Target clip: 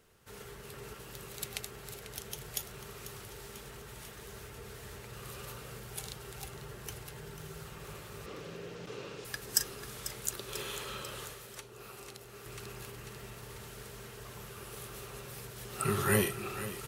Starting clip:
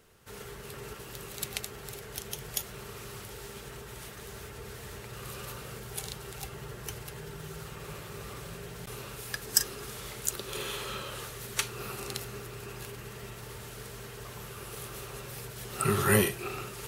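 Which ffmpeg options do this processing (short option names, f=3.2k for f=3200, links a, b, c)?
-filter_complex "[0:a]asettb=1/sr,asplit=3[a][b][c];[a]atrim=end=8.264[d];[b]atrim=start=8.26:end=9.25,asetpts=PTS-STARTPTS,afade=t=in:d=0.004:c=qsin,afade=t=out:st=0.986:d=0.004:c=qsin,highpass=130,equalizer=f=180:t=q:w=4:g=4,equalizer=f=310:t=q:w=4:g=9,equalizer=f=490:t=q:w=4:g=9,equalizer=f=2.7k:t=q:w=4:g=3,lowpass=f=6.5k:w=0.5412,lowpass=f=6.5k:w=1.3066[e];[c]atrim=start=9.246[f];[d][e]acrossfade=d=0.004:c1=hsin:c2=qsin[g];[g][f]acrossfade=d=0.004:c1=qsin:c2=hsin,aecho=1:1:493|986|1479|1972|2465|2958:0.224|0.132|0.0779|0.046|0.0271|0.016,asettb=1/sr,asplit=3[h][i][j];[h]atrim=end=11.334[k];[i]atrim=start=11.33:end=12.46,asetpts=PTS-STARTPTS,afade=t=in:d=0.004:c=qsin,afade=t=out:st=1.126:d=0.004:c=qsin,acrossover=split=340|780[l][m][n];[l]acompressor=threshold=-53dB:ratio=4[o];[m]acompressor=threshold=-49dB:ratio=4[p];[n]acompressor=threshold=-45dB:ratio=4[q];[o][p][q]amix=inputs=3:normalize=0[r];[j]atrim=start=12.456[s];[k][r]acrossfade=d=0.004:c1=hsin:c2=qsin[t];[t][s]acrossfade=d=0.004:c1=qsin:c2=hsin,volume=-4dB"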